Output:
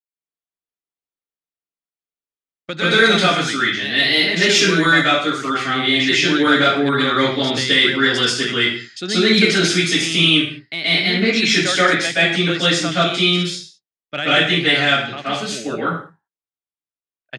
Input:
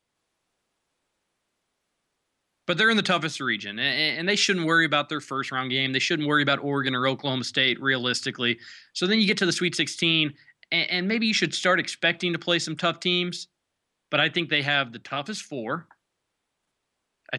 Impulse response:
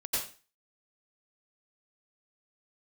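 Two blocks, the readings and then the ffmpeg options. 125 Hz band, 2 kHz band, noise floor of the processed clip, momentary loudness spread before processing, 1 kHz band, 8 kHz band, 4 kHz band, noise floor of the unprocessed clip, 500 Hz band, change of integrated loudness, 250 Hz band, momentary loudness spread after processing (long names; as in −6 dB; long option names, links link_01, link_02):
+7.5 dB, +8.0 dB, below −85 dBFS, 10 LU, +8.5 dB, +9.0 dB, +9.0 dB, −80 dBFS, +8.5 dB, +8.5 dB, +8.0 dB, 10 LU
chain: -filter_complex "[0:a]acontrast=46,agate=range=-33dB:threshold=-30dB:ratio=3:detection=peak[link_01];[1:a]atrim=start_sample=2205,afade=type=out:start_time=0.3:duration=0.01,atrim=end_sample=13671,asetrate=31311,aresample=44100[link_02];[link_01][link_02]afir=irnorm=-1:irlink=0,volume=-5.5dB"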